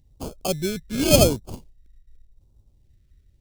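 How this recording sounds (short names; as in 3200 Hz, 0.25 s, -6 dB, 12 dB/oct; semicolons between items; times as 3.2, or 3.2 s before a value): aliases and images of a low sample rate 1900 Hz, jitter 0%; phasing stages 2, 0.88 Hz, lowest notch 800–1800 Hz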